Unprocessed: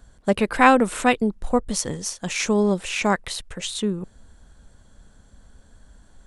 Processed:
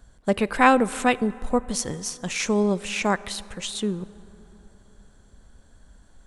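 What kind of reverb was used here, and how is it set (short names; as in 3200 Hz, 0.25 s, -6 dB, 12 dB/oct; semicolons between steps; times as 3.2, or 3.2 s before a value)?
plate-style reverb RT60 3.7 s, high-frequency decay 0.45×, DRR 18.5 dB; gain -2 dB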